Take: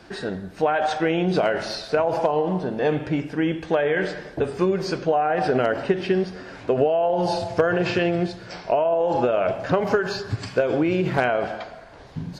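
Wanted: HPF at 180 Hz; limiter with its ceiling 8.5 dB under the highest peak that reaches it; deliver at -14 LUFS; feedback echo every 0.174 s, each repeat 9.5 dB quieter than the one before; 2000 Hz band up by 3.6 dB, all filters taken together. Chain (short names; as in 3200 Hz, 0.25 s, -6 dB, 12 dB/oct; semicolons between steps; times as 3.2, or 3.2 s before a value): HPF 180 Hz; bell 2000 Hz +5 dB; limiter -12 dBFS; feedback echo 0.174 s, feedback 33%, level -9.5 dB; gain +9.5 dB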